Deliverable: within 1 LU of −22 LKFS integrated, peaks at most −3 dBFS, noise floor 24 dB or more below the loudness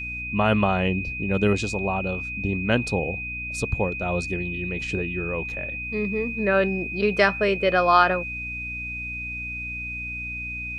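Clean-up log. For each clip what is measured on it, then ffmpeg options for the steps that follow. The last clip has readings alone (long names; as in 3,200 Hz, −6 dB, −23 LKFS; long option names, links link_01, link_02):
mains hum 60 Hz; hum harmonics up to 300 Hz; level of the hum −36 dBFS; interfering tone 2,500 Hz; level of the tone −30 dBFS; integrated loudness −24.5 LKFS; sample peak −4.0 dBFS; target loudness −22.0 LKFS
→ -af "bandreject=frequency=60:width_type=h:width=4,bandreject=frequency=120:width_type=h:width=4,bandreject=frequency=180:width_type=h:width=4,bandreject=frequency=240:width_type=h:width=4,bandreject=frequency=300:width_type=h:width=4"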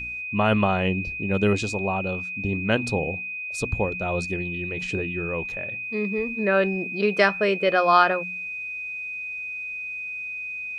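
mains hum none found; interfering tone 2,500 Hz; level of the tone −30 dBFS
→ -af "bandreject=frequency=2500:width=30"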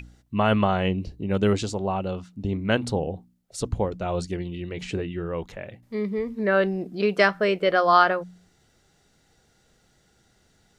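interfering tone none found; integrated loudness −25.0 LKFS; sample peak −4.5 dBFS; target loudness −22.0 LKFS
→ -af "volume=3dB,alimiter=limit=-3dB:level=0:latency=1"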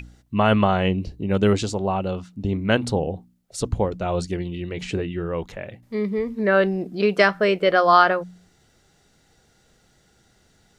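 integrated loudness −22.0 LKFS; sample peak −3.0 dBFS; background noise floor −61 dBFS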